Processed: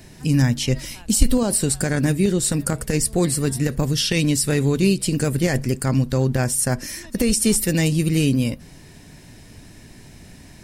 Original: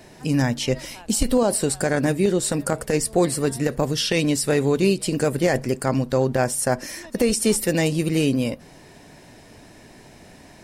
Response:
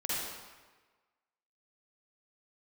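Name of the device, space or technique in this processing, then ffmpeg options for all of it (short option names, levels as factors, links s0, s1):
smiley-face EQ: -af "lowshelf=f=180:g=8,equalizer=f=650:t=o:w=1.9:g=-8,highshelf=f=8100:g=4.5,volume=1.19"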